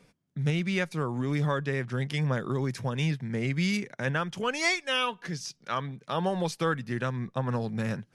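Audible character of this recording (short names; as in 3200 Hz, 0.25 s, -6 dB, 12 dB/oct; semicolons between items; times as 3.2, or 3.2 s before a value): noise floor -68 dBFS; spectral tilt -4.5 dB/oct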